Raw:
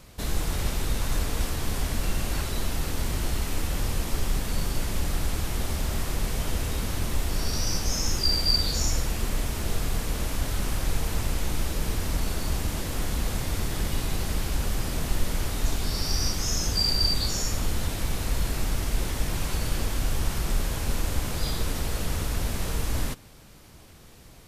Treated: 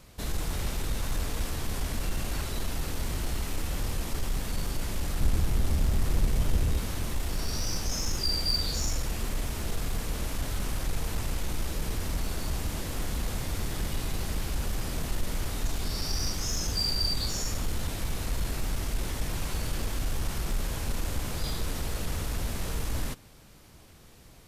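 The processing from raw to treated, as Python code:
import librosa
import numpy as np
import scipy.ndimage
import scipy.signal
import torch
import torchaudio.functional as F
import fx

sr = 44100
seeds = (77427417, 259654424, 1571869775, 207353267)

p1 = fx.low_shelf(x, sr, hz=320.0, db=9.0, at=(5.2, 6.78))
p2 = 10.0 ** (-22.0 / 20.0) * (np.abs((p1 / 10.0 ** (-22.0 / 20.0) + 3.0) % 4.0 - 2.0) - 1.0)
p3 = p1 + F.gain(torch.from_numpy(p2), -10.5).numpy()
y = F.gain(torch.from_numpy(p3), -5.5).numpy()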